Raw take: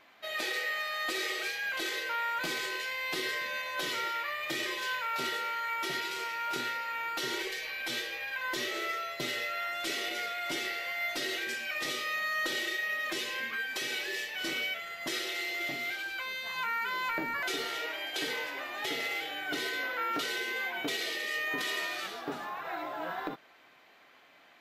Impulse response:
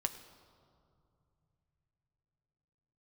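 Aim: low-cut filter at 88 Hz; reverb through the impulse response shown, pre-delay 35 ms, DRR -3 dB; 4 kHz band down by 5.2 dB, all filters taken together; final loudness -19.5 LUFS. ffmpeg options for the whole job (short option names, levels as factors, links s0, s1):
-filter_complex "[0:a]highpass=88,equalizer=f=4000:t=o:g=-7,asplit=2[s0][s1];[1:a]atrim=start_sample=2205,adelay=35[s2];[s1][s2]afir=irnorm=-1:irlink=0,volume=1.26[s3];[s0][s3]amix=inputs=2:normalize=0,volume=3.35"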